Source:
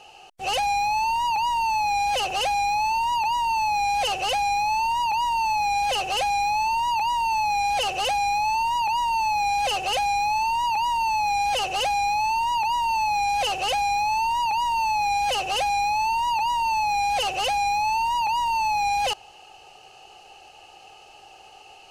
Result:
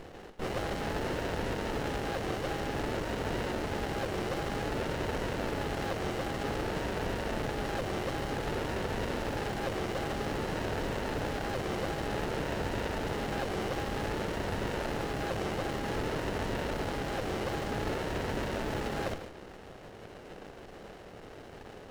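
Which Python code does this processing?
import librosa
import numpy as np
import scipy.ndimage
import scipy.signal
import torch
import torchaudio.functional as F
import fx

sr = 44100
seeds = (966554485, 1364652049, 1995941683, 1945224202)

p1 = fx.spec_flatten(x, sr, power=0.27)
p2 = fx.fold_sine(p1, sr, drive_db=19, ceiling_db=-8.0)
p3 = p1 + (p2 * 10.0 ** (-11.0 / 20.0))
p4 = scipy.signal.savgol_filter(p3, 25, 4, mode='constant')
p5 = fx.peak_eq(p4, sr, hz=450.0, db=6.0, octaves=1.2)
p6 = fx.doubler(p5, sr, ms=49.0, db=-10.5)
p7 = p6 + 10.0 ** (-10.5 / 20.0) * np.pad(p6, (int(145 * sr / 1000.0), 0))[:len(p6)]
p8 = fx.running_max(p7, sr, window=33)
y = p8 * 10.0 ** (-8.5 / 20.0)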